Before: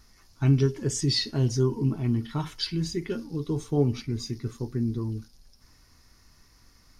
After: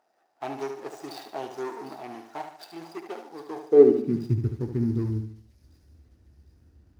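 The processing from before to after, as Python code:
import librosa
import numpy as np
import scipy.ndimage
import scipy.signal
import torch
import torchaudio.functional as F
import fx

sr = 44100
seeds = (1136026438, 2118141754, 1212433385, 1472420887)

p1 = scipy.signal.medfilt(x, 41)
p2 = fx.peak_eq(p1, sr, hz=330.0, db=5.5, octaves=0.52)
p3 = p2 + fx.echo_wet_highpass(p2, sr, ms=753, feedback_pct=46, hz=4000.0, wet_db=-11, dry=0)
p4 = fx.filter_sweep_highpass(p3, sr, from_hz=740.0, to_hz=72.0, start_s=3.54, end_s=4.51, q=5.4)
p5 = fx.low_shelf(p4, sr, hz=160.0, db=-3.0)
y = fx.echo_feedback(p5, sr, ms=73, feedback_pct=40, wet_db=-8)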